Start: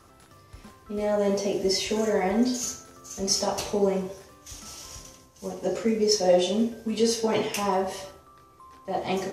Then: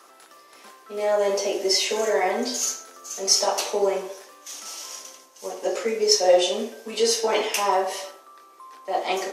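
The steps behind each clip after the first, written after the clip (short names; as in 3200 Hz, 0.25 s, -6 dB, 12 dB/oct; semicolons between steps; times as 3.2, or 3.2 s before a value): Bessel high-pass 500 Hz, order 4; gain +6 dB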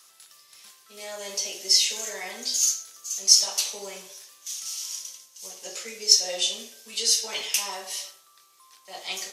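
EQ curve 150 Hz 0 dB, 260 Hz -19 dB, 750 Hz -16 dB, 1600 Hz -9 dB, 3600 Hz +3 dB, 7200 Hz +5 dB; gain -1 dB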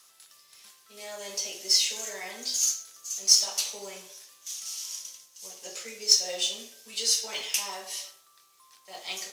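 companded quantiser 6-bit; gain -3 dB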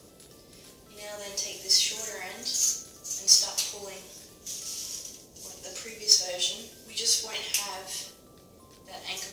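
band noise 35–560 Hz -55 dBFS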